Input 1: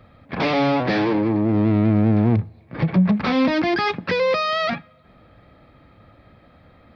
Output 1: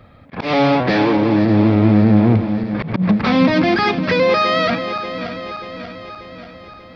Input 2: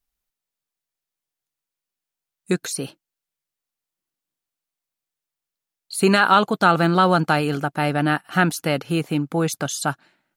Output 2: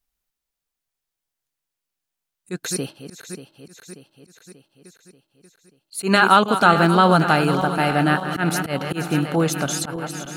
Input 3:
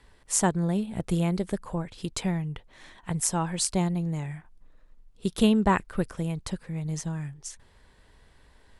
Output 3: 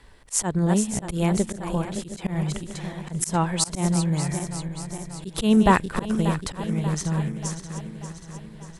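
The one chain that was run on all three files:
feedback delay that plays each chunk backwards 293 ms, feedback 74%, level −10.5 dB
volume swells 119 ms
normalise the peak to −2 dBFS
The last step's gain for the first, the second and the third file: +4.0, +1.5, +5.5 decibels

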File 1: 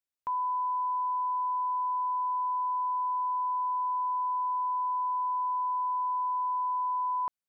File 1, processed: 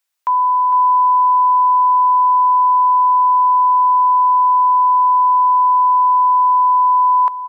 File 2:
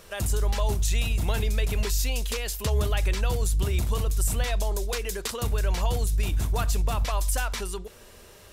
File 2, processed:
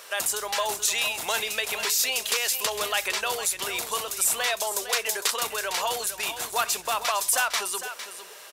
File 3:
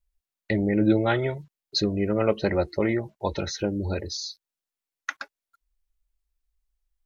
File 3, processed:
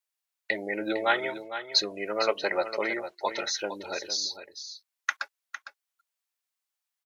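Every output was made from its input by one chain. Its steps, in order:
high-pass filter 740 Hz 12 dB per octave
on a send: single-tap delay 456 ms −11 dB
on the sum: normalise the peak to −9 dBFS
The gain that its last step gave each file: +17.0, +7.5, +3.5 decibels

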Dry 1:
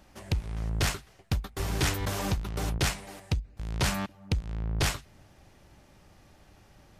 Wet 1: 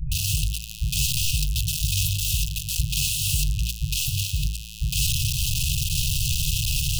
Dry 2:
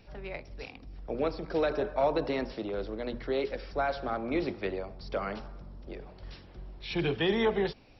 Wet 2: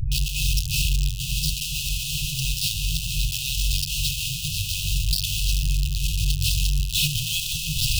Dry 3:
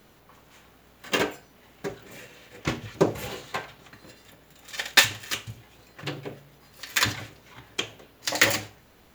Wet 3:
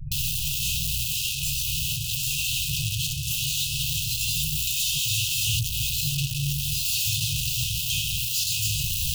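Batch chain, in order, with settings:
sign of each sample alone
hum removal 54.79 Hz, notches 28
all-pass dispersion highs, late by 117 ms, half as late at 320 Hz
brick-wall band-stop 170–2,500 Hz
loudness normalisation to −24 LKFS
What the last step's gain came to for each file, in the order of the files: +11.0, +13.5, +7.5 decibels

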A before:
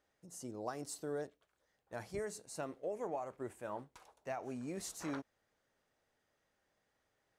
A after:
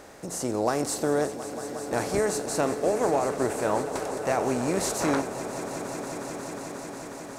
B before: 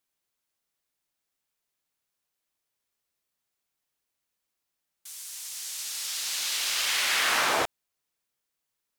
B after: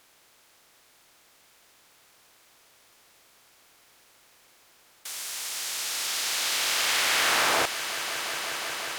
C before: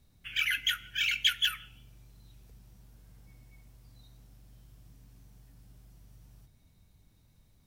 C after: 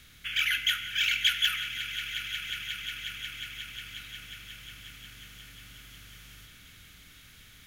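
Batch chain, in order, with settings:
compressor on every frequency bin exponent 0.6
echo that builds up and dies away 180 ms, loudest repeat 5, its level −15 dB
normalise the peak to −12 dBFS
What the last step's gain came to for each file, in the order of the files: +13.0, −1.5, −0.5 decibels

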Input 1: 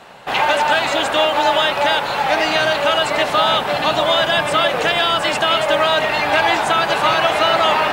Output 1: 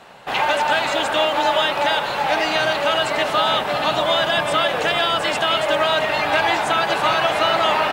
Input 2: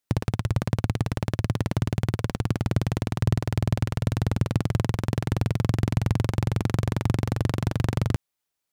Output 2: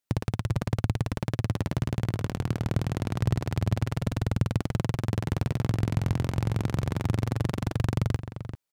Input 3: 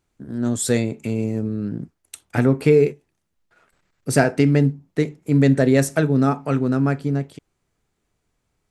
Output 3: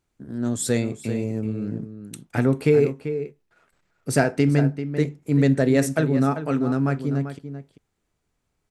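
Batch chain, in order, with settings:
slap from a distant wall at 67 metres, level −10 dB
level −3 dB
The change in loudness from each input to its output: −2.5, −2.5, −3.0 LU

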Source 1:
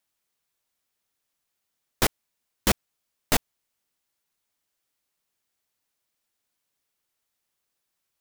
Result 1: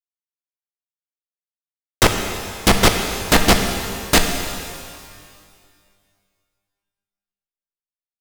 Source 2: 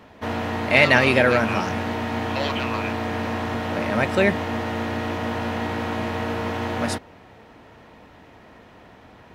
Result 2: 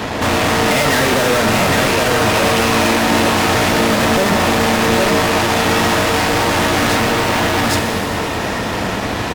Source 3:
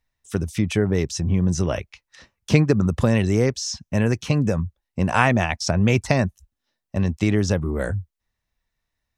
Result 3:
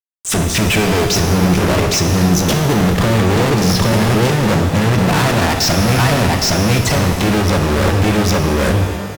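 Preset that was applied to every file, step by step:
one-sided soft clipper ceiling −12 dBFS
on a send: single-tap delay 813 ms −7 dB
on the sum: treble cut that deepens with the level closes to 1,800 Hz, closed at −18.5 dBFS
fuzz pedal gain 46 dB, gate −52 dBFS
reverb with rising layers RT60 2 s, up +12 semitones, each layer −8 dB, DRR 4.5 dB
normalise the peak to −3 dBFS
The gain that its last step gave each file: +3.5, −1.5, −1.0 decibels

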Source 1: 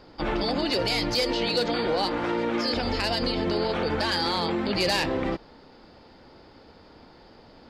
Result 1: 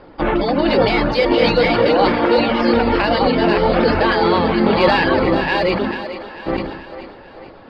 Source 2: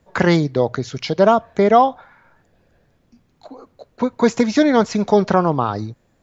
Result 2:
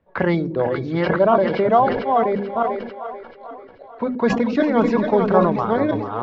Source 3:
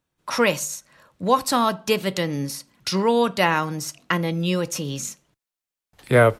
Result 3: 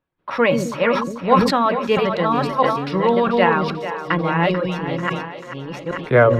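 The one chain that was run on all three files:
delay that plays each chunk backwards 657 ms, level −2 dB
reverb reduction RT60 0.62 s
low-shelf EQ 220 Hz −4 dB
mains-hum notches 50/100/150/200/250 Hz
tuned comb filter 560 Hz, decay 0.23 s, harmonics all, mix 60%
in parallel at −8 dB: dead-zone distortion −42 dBFS
on the sum: high-frequency loss of the air 410 metres
on a send: echo with a time of its own for lows and highs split 370 Hz, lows 132 ms, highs 440 ms, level −11 dB
on the sum: level that may fall only so fast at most 57 dB per second
normalise the peak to −1.5 dBFS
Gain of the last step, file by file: +18.0, +3.0, +9.5 decibels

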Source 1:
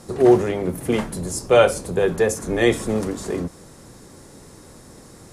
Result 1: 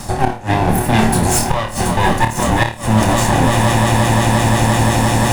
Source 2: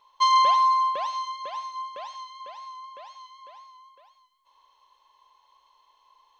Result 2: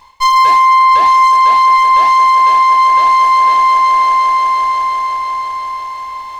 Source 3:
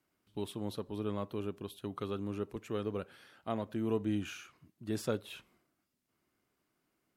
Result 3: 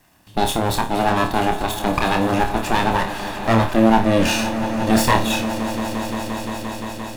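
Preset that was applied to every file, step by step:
lower of the sound and its delayed copy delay 1.1 ms
on a send: echo that builds up and dies away 174 ms, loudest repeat 5, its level −17 dB
on the sum: gate with flip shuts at −10 dBFS, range −29 dB
reversed playback
downward compressor 10 to 1, threshold −35 dBFS
reversed playback
flutter between parallel walls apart 4.6 metres, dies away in 0.27 s
boost into a limiter +25 dB
level −1 dB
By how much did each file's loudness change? +5.5, +14.0, +18.5 LU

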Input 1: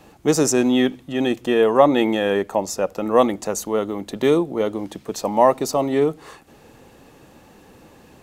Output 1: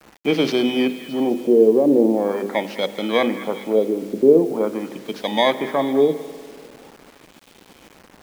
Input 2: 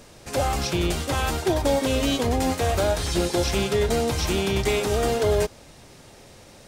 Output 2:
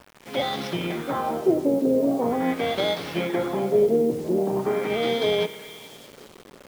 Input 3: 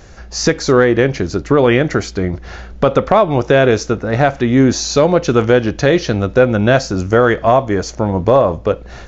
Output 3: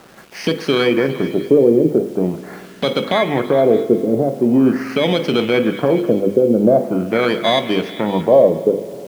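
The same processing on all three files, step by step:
samples in bit-reversed order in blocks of 16 samples
high-pass filter 170 Hz 24 dB per octave
low-shelf EQ 380 Hz +6.5 dB
mains-hum notches 50/100/150/200/250/300/350/400/450/500 Hz
brickwall limiter −2.5 dBFS
auto-filter low-pass sine 0.43 Hz 400–3,600 Hz
on a send: echo through a band-pass that steps 206 ms, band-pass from 1,600 Hz, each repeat 0.7 octaves, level −11 dB
on the sum: spring reverb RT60 2.4 s, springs 49 ms, chirp 55 ms, DRR 14 dB
bit reduction 7 bits
level −3 dB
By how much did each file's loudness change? +0.5, −0.5, −2.0 LU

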